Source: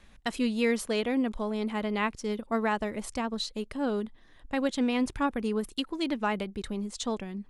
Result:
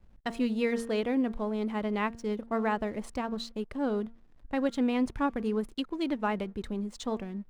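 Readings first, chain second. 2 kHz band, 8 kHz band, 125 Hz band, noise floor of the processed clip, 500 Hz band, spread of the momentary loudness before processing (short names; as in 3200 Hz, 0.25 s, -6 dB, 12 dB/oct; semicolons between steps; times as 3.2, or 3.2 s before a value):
-3.5 dB, -8.5 dB, 0.0 dB, -57 dBFS, -0.5 dB, 7 LU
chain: high shelf 2500 Hz -8.5 dB; de-hum 231 Hz, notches 8; backlash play -53 dBFS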